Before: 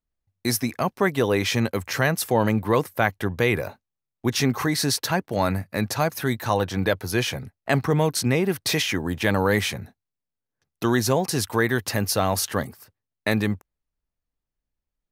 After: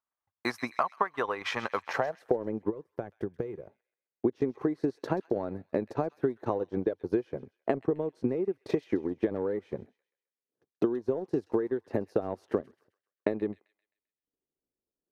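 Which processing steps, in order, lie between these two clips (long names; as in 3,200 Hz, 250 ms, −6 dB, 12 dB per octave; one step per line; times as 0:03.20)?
band-pass filter sweep 1,100 Hz → 380 Hz, 0:01.75–0:02.41
downward compressor 8 to 1, threshold −35 dBFS, peak gain reduction 15 dB
gain on a spectral selection 0:02.70–0:03.97, 210–4,400 Hz −7 dB
transient designer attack +6 dB, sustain −11 dB
delay with a high-pass on its return 131 ms, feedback 41%, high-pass 2,700 Hz, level −13 dB
level +6.5 dB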